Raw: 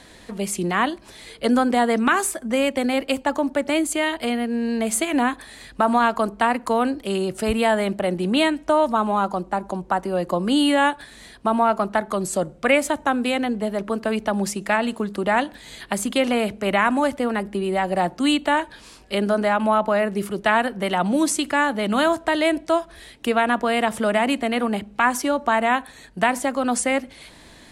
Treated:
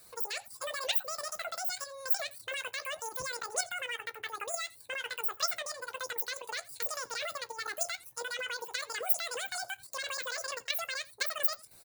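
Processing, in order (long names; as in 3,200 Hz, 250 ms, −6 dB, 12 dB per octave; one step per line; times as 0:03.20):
peak hold with a decay on every bin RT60 0.39 s
first-order pre-emphasis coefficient 0.8
notch filter 1,400 Hz, Q 29
reverb reduction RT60 0.68 s
high-shelf EQ 9,500 Hz +11.5 dB
mains-hum notches 60/120/180/240/300/360/420 Hz
output level in coarse steps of 9 dB
on a send: single-tap delay 198 ms −22 dB
on the sum: wrong playback speed 33 rpm record played at 78 rpm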